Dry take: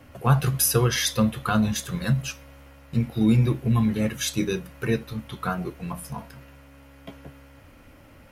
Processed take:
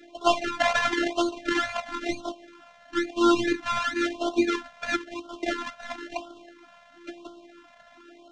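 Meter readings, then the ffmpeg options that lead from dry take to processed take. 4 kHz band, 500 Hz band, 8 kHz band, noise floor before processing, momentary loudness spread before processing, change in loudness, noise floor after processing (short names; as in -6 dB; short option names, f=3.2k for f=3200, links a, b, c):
-1.0 dB, +2.0 dB, -12.0 dB, -50 dBFS, 15 LU, -2.5 dB, -54 dBFS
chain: -af "acrusher=samples=29:mix=1:aa=0.000001:lfo=1:lforange=17.4:lforate=2.2,highpass=f=200:w=0.5412,highpass=f=200:w=1.3066,equalizer=f=240:t=q:w=4:g=4,equalizer=f=380:t=q:w=4:g=-9,equalizer=f=970:t=q:w=4:g=-4,equalizer=f=1.5k:t=q:w=4:g=6,equalizer=f=4.7k:t=q:w=4:g=-7,lowpass=f=5.7k:w=0.5412,lowpass=f=5.7k:w=1.3066,afftfilt=real='hypot(re,im)*cos(PI*b)':imag='0':win_size=512:overlap=0.75,afftfilt=real='re*(1-between(b*sr/1024,310*pow(2000/310,0.5+0.5*sin(2*PI*0.99*pts/sr))/1.41,310*pow(2000/310,0.5+0.5*sin(2*PI*0.99*pts/sr))*1.41))':imag='im*(1-between(b*sr/1024,310*pow(2000/310,0.5+0.5*sin(2*PI*0.99*pts/sr))/1.41,310*pow(2000/310,0.5+0.5*sin(2*PI*0.99*pts/sr))*1.41))':win_size=1024:overlap=0.75,volume=8dB"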